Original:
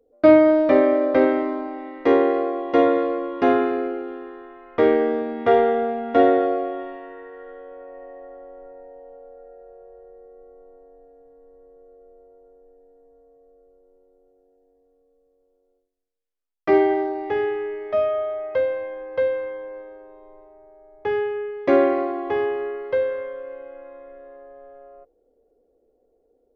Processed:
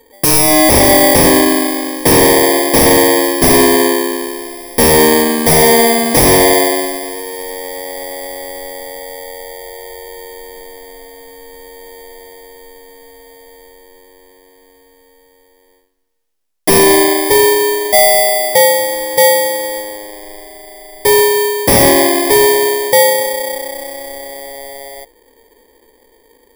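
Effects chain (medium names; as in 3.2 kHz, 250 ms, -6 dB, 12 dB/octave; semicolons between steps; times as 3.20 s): bit-reversed sample order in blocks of 32 samples; sine folder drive 13 dB, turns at -3 dBFS; trim -1 dB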